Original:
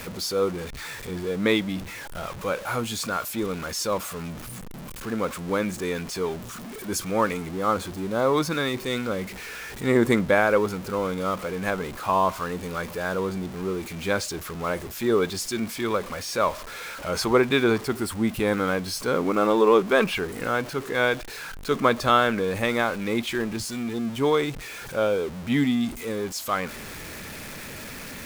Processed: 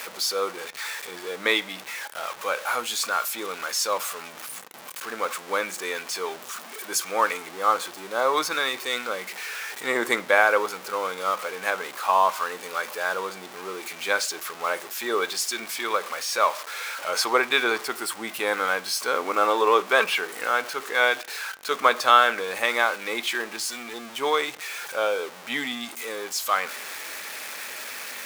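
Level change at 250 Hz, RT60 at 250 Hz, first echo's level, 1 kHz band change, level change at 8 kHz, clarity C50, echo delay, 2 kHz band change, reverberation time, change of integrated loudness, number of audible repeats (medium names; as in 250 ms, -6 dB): -12.0 dB, 0.65 s, no echo, +3.5 dB, +4.0 dB, 22.5 dB, no echo, +4.5 dB, 0.45 s, 0.0 dB, no echo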